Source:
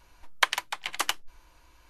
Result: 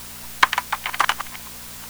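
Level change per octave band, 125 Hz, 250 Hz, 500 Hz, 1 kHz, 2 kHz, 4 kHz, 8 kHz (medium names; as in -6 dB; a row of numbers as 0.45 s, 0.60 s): no reading, +11.5 dB, +4.5 dB, +11.0 dB, +8.0 dB, +4.0 dB, +4.5 dB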